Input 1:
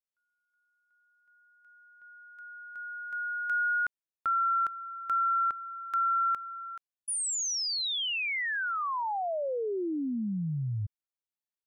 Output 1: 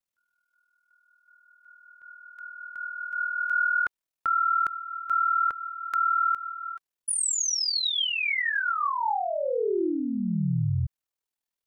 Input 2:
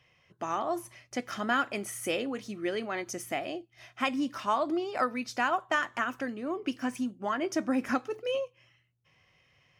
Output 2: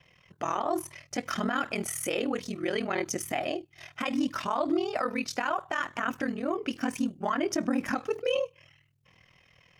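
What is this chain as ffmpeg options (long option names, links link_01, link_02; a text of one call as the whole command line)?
ffmpeg -i in.wav -af "aphaser=in_gain=1:out_gain=1:delay=2.7:decay=0.22:speed=0.66:type=triangular,alimiter=level_in=1dB:limit=-24dB:level=0:latency=1:release=39,volume=-1dB,aeval=exprs='val(0)*sin(2*PI*20*n/s)':channel_layout=same,volume=7.5dB" out.wav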